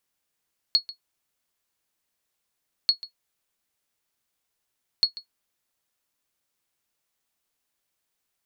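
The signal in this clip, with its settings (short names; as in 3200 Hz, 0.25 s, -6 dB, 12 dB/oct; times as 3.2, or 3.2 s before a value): sonar ping 4340 Hz, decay 0.11 s, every 2.14 s, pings 3, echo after 0.14 s, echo -18 dB -10 dBFS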